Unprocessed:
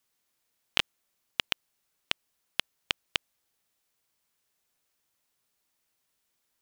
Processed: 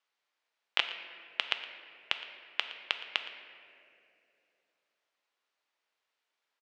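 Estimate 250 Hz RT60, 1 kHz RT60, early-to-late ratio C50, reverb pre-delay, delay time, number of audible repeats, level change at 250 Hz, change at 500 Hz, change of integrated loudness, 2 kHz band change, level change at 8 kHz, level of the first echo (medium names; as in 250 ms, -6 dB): 3.3 s, 2.2 s, 8.0 dB, 4 ms, 116 ms, 1, -11.0 dB, -2.5 dB, -1.5 dB, 0.0 dB, -12.0 dB, -17.5 dB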